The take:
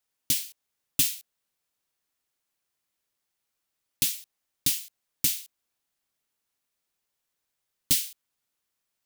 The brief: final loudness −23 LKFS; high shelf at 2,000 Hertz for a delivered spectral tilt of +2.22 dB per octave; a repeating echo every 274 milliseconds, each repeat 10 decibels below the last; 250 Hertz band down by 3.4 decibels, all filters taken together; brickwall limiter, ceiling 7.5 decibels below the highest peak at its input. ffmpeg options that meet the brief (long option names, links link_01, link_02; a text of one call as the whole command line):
ffmpeg -i in.wav -af "equalizer=frequency=250:width_type=o:gain=-4.5,highshelf=frequency=2000:gain=8,alimiter=limit=-8dB:level=0:latency=1,aecho=1:1:274|548|822|1096:0.316|0.101|0.0324|0.0104,volume=0.5dB" out.wav